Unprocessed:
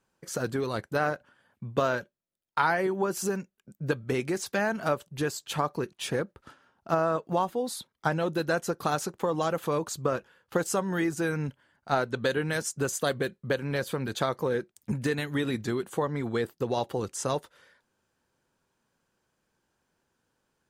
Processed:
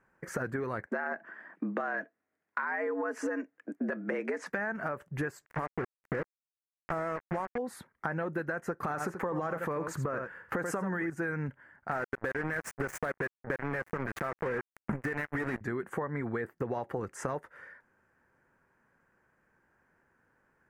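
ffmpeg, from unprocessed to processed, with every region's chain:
-filter_complex "[0:a]asettb=1/sr,asplit=3[a][b][c];[a]atrim=end=0.874[d];[b]atrim=start=0.87:end=4.5,asetpts=PTS-STARTPTS,afade=t=in:d=0.004:c=qsin,afade=t=out:st=3.626:d=0.004:c=qsin,afreqshift=88,acontrast=70,highpass=160,lowpass=6.4k[e];[c]atrim=start=4.496[f];[d][e]acrossfade=d=0.004:c1=hsin:c2=qsin[g];[g][f]acrossfade=d=0.004:c1=qsin:c2=hsin,asettb=1/sr,asplit=3[h][i][j];[h]atrim=end=5.464[k];[i]atrim=start=5.46:end=7.58,asetpts=PTS-STARTPTS,afade=t=in:d=0.004:c=qsin,afade=t=out:st=2.116:d=0.004:c=qsin,lowpass=f=1.3k:p=1,acrusher=bits=4:mix=0:aa=0.5,aeval=exprs='sgn(val(0))*max(abs(val(0))-0.00251,0)':c=same[l];[j]atrim=start=7.576[m];[k][l]acrossfade=d=0.004:c1=hsin:c2=qsin[n];[n][m]acrossfade=d=0.004:c1=qsin:c2=hsin,asettb=1/sr,asplit=3[o][p][q];[o]atrim=end=8.834[r];[p]atrim=start=8.83:end=11.1,asetpts=PTS-STARTPTS,afade=t=in:d=0.004:c=qsin,afade=t=out:st=2.266:d=0.004:c=qsin,acontrast=74,aecho=1:1:84:0.237,atrim=end_sample=100107[s];[q]atrim=start=11.096[t];[r][s]acrossfade=d=0.004:c1=hsin:c2=qsin[u];[u][t]acrossfade=d=0.004:c1=qsin:c2=hsin,asettb=1/sr,asplit=3[v][w][x];[v]atrim=end=11.914[y];[w]atrim=start=11.91:end=15.61,asetpts=PTS-STARTPTS,afade=t=in:d=0.004:c=qsin,afade=t=out:st=3.696:d=0.004:c=qsin,acontrast=36,acrusher=bits=3:mix=0:aa=0.5[z];[x]atrim=start=15.606[aa];[y][z]acrossfade=d=0.004:c1=hsin:c2=qsin[ab];[ab][aa]acrossfade=d=0.004:c1=qsin:c2=hsin,highshelf=f=2.6k:t=q:w=3:g=-12,alimiter=limit=-17.5dB:level=0:latency=1,acompressor=threshold=-35dB:ratio=6,volume=4dB"

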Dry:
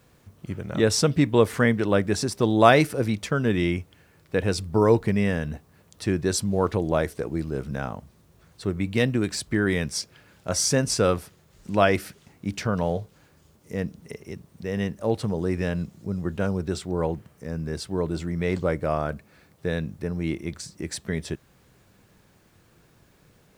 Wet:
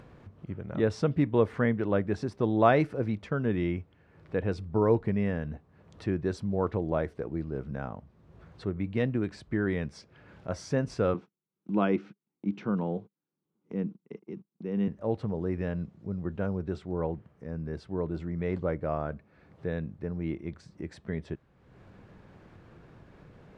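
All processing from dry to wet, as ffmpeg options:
-filter_complex "[0:a]asettb=1/sr,asplit=3[a][b][c];[a]atrim=end=11.144[d];[b]atrim=start=11.14:end=14.88,asetpts=PTS-STARTPTS,afade=t=in:d=0.004:c=qsin,afade=t=out:st=3.736:d=0.004:c=qsin,agate=range=-31dB:threshold=-44dB:ratio=16:release=100:detection=peak,highpass=f=150:w=0.5412,highpass=f=150:w=1.3066,equalizer=f=200:t=q:w=4:g=6,equalizer=f=330:t=q:w=4:g=7,equalizer=f=620:t=q:w=4:g=-9,equalizer=f=1.8k:t=q:w=4:g=-8,equalizer=f=4.8k:t=q:w=4:g=-7,lowpass=f=6.1k:w=0.5412,lowpass=f=6.1k:w=1.3066[e];[c]atrim=start=14.876[f];[d][e]acrossfade=d=0.004:c1=hsin:c2=qsin[g];[g][f]acrossfade=d=0.004:c1=qsin:c2=hsin,lowpass=f=2.5k:p=1,aemphasis=mode=reproduction:type=75fm,acompressor=mode=upward:threshold=-35dB:ratio=2.5,volume=-6dB"

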